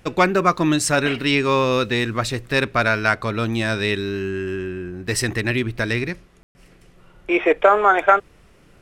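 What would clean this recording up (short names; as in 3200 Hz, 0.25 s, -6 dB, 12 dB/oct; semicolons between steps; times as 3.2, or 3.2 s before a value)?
room tone fill 6.43–6.55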